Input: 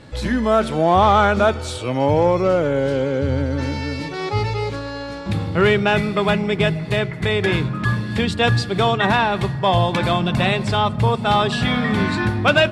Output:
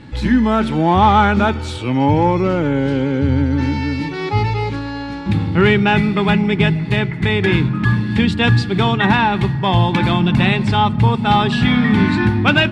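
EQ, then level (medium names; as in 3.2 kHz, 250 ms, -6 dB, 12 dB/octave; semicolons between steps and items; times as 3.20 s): resonant low shelf 420 Hz +11.5 dB, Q 1.5; peaking EQ 860 Hz +11 dB 0.24 oct; peaking EQ 2.2 kHz +11.5 dB 2.5 oct; -7.5 dB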